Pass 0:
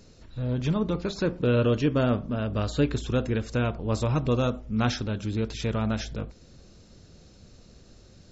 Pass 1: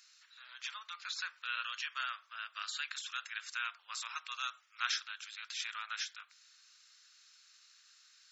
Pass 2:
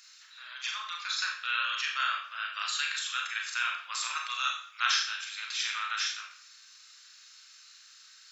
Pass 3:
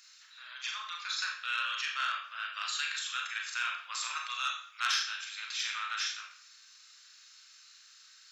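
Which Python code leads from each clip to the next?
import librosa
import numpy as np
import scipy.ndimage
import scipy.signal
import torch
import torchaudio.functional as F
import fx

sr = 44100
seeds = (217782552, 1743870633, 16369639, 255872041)

y1 = scipy.signal.sosfilt(scipy.signal.butter(6, 1300.0, 'highpass', fs=sr, output='sos'), x)
y1 = y1 * 10.0 ** (-1.0 / 20.0)
y2 = fx.rev_schroeder(y1, sr, rt60_s=0.48, comb_ms=29, drr_db=0.5)
y2 = y2 * 10.0 ** (6.0 / 20.0)
y3 = fx.transformer_sat(y2, sr, knee_hz=3400.0)
y3 = y3 * 10.0 ** (-2.5 / 20.0)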